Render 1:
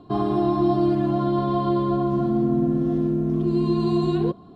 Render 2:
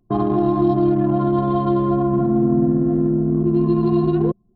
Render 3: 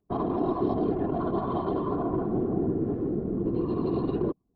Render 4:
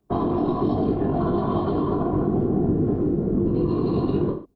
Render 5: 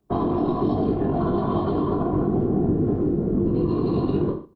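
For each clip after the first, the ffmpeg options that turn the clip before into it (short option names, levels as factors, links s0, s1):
-filter_complex "[0:a]anlmdn=251,acrossover=split=330|3000[s0][s1][s2];[s1]acompressor=threshold=0.0708:ratio=6[s3];[s0][s3][s2]amix=inputs=3:normalize=0,volume=1.68"
-af "lowshelf=f=140:g=-10,afftfilt=real='hypot(re,im)*cos(2*PI*random(0))':imag='hypot(re,im)*sin(2*PI*random(1))':win_size=512:overlap=0.75,volume=0.794"
-filter_complex "[0:a]aecho=1:1:20|43|69.45|99.87|134.8:0.631|0.398|0.251|0.158|0.1,acrossover=split=220|3000[s0][s1][s2];[s1]acompressor=threshold=0.0355:ratio=6[s3];[s0][s3][s2]amix=inputs=3:normalize=0,volume=2.11"
-af "aecho=1:1:79|158|237:0.0891|0.0321|0.0116"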